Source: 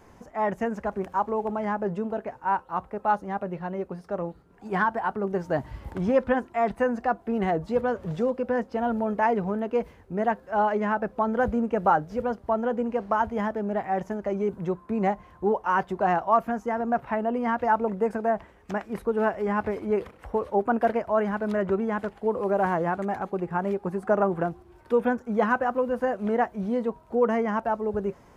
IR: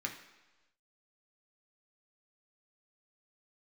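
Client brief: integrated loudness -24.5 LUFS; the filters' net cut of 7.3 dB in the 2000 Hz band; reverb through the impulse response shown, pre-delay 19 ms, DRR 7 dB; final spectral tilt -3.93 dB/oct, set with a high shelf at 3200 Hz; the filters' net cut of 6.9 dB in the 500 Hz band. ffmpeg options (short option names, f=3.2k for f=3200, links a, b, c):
-filter_complex "[0:a]equalizer=f=500:t=o:g=-8,equalizer=f=2k:t=o:g=-8,highshelf=f=3.2k:g=-7,asplit=2[a][b];[1:a]atrim=start_sample=2205,adelay=19[c];[b][c]afir=irnorm=-1:irlink=0,volume=-9dB[d];[a][d]amix=inputs=2:normalize=0,volume=6dB"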